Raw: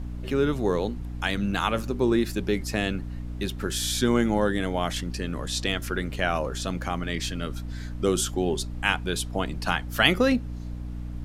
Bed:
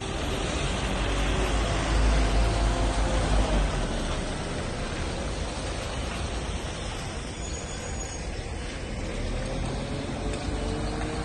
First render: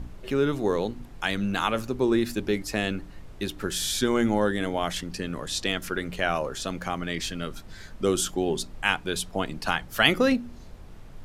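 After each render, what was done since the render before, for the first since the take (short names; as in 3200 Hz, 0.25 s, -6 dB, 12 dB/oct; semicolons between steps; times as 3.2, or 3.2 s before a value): de-hum 60 Hz, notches 5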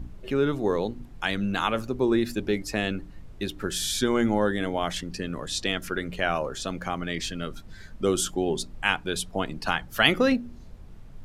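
denoiser 6 dB, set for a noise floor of -44 dBFS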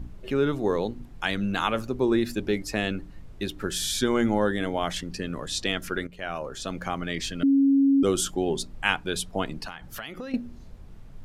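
6.07–6.8 fade in, from -14 dB; 7.43–8.03 bleep 275 Hz -16 dBFS; 9.64–10.34 compressor 10:1, threshold -33 dBFS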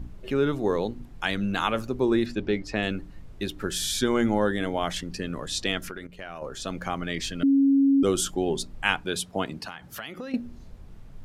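2.26–2.83 LPF 4500 Hz; 5.88–6.42 compressor, threshold -33 dBFS; 9.05–10.4 HPF 91 Hz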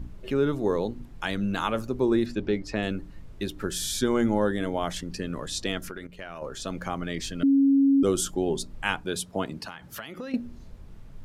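notch 750 Hz, Q 19; dynamic EQ 2500 Hz, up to -5 dB, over -40 dBFS, Q 0.76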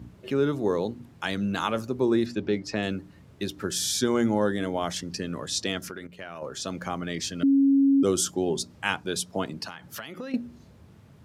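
HPF 81 Hz 24 dB/oct; dynamic EQ 5500 Hz, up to +6 dB, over -51 dBFS, Q 1.7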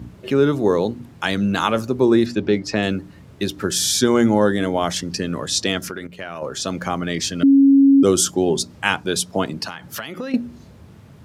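gain +8 dB; limiter -2 dBFS, peak gain reduction 1 dB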